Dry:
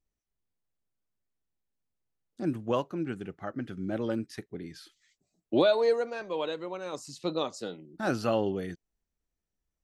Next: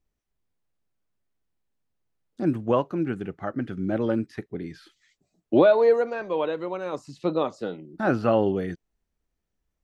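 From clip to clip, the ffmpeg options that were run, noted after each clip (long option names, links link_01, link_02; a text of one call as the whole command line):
ffmpeg -i in.wav -filter_complex "[0:a]highshelf=frequency=4400:gain=-8.5,acrossover=split=2800[link_01][link_02];[link_02]acompressor=threshold=-59dB:ratio=4:attack=1:release=60[link_03];[link_01][link_03]amix=inputs=2:normalize=0,volume=6.5dB" out.wav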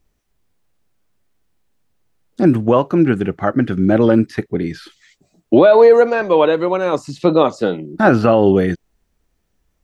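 ffmpeg -i in.wav -af "alimiter=level_in=14.5dB:limit=-1dB:release=50:level=0:latency=1,volume=-1dB" out.wav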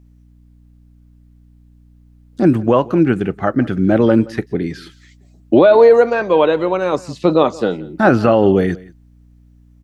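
ffmpeg -i in.wav -af "aecho=1:1:174:0.0841,aeval=exprs='val(0)+0.00501*(sin(2*PI*60*n/s)+sin(2*PI*2*60*n/s)/2+sin(2*PI*3*60*n/s)/3+sin(2*PI*4*60*n/s)/4+sin(2*PI*5*60*n/s)/5)':channel_layout=same" out.wav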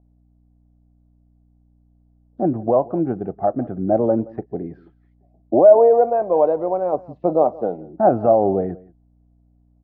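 ffmpeg -i in.wav -af "lowpass=frequency=710:width_type=q:width=5.1,volume=-10dB" out.wav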